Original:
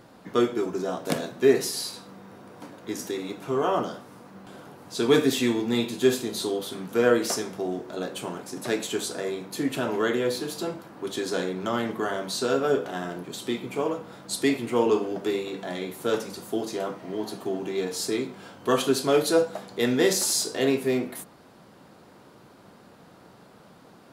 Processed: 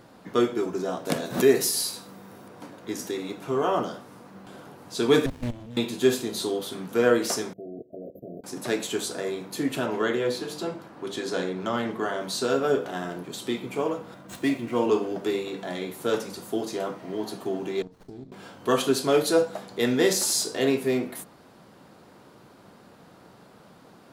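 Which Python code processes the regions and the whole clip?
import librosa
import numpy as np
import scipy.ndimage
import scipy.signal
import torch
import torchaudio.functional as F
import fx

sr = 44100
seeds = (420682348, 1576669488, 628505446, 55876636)

y = fx.chain(x, sr, fx.high_shelf(hz=8300.0, db=11.5),
    fx.pre_swell(db_per_s=140.0), at=(1.25, 2.48))
y = fx.chain(y, sr, fx.peak_eq(hz=820.0, db=-12.5, octaves=2.1),
    fx.level_steps(step_db=13),
    fx.running_max(window=65), at=(5.26, 5.77))
y = fx.chain(y, sr, fx.high_shelf(hz=11000.0, db=-10.5),
    fx.level_steps(step_db=19),
    fx.brickwall_bandstop(low_hz=720.0, high_hz=12000.0), at=(7.53, 8.44))
y = fx.chain(y, sr, fx.high_shelf(hz=9800.0, db=-10.0),
    fx.hum_notches(base_hz=50, count=9), at=(9.86, 12.21))
y = fx.chain(y, sr, fx.median_filter(points=9),
    fx.notch_comb(f0_hz=430.0), at=(14.14, 14.89))
y = fx.chain(y, sr, fx.level_steps(step_db=10),
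    fx.curve_eq(hz=(120.0, 1500.0, 2400.0, 4600.0, 13000.0), db=(0, -26, -28, -15, -28)),
    fx.running_max(window=17), at=(17.82, 18.32))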